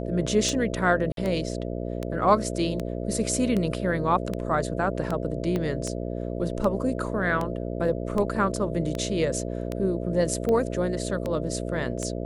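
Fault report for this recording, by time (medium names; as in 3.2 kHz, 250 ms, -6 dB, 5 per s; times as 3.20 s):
buzz 60 Hz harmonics 11 -31 dBFS
tick 78 rpm
1.12–1.17 s: dropout 52 ms
5.56 s: pop -16 dBFS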